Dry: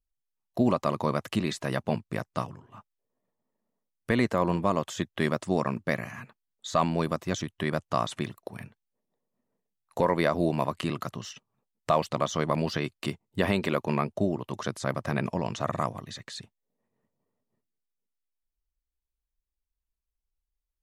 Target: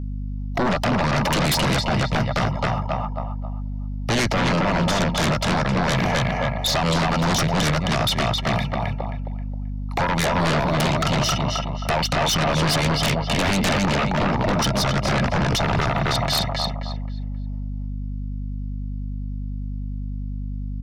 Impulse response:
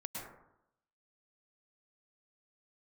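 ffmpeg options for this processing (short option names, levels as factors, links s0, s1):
-filter_complex "[0:a]asuperstop=centerf=1500:order=12:qfactor=5.7,equalizer=f=910:t=o:w=1.1:g=11,aecho=1:1:1.4:0.64,asplit=2[s0][s1];[s1]adelay=266,lowpass=f=3700:p=1,volume=0.708,asplit=2[s2][s3];[s3]adelay=266,lowpass=f=3700:p=1,volume=0.33,asplit=2[s4][s5];[s5]adelay=266,lowpass=f=3700:p=1,volume=0.33,asplit=2[s6][s7];[s7]adelay=266,lowpass=f=3700:p=1,volume=0.33[s8];[s0][s2][s4][s6][s8]amix=inputs=5:normalize=0,alimiter=limit=0.178:level=0:latency=1:release=72,highshelf=f=6500:t=q:w=3:g=-7.5,acrossover=split=350|1400[s9][s10][s11];[s10]acompressor=threshold=0.0178:ratio=6[s12];[s9][s12][s11]amix=inputs=3:normalize=0,aeval=exprs='val(0)+0.00794*(sin(2*PI*50*n/s)+sin(2*PI*2*50*n/s)/2+sin(2*PI*3*50*n/s)/3+sin(2*PI*4*50*n/s)/4+sin(2*PI*5*50*n/s)/5)':c=same,aeval=exprs='0.224*sin(PI/2*5.62*val(0)/0.224)':c=same,volume=0.668"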